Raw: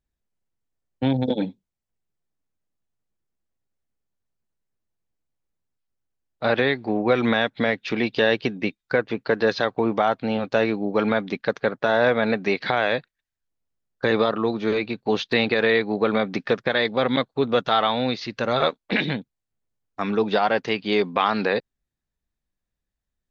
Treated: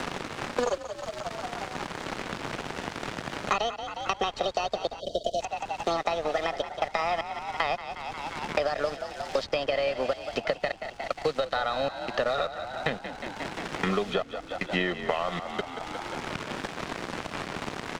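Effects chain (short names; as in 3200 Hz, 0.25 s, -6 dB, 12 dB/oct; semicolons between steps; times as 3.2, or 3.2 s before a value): speed glide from 196% -> 63%; Bessel high-pass 260 Hz, order 2; notch 2300 Hz, Q 14; comb 1.6 ms, depth 66%; compressor, threshold -21 dBFS, peak gain reduction 8.5 dB; step gate "x..xxxx.x" 77 bpm -60 dB; added noise pink -42 dBFS; crossover distortion -39 dBFS; on a send: frequency-shifting echo 0.179 s, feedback 55%, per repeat +44 Hz, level -13 dB; on the sum: spectral gain 5–5.4, 700–2900 Hz -29 dB; air absorption 100 m; three-band squash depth 100%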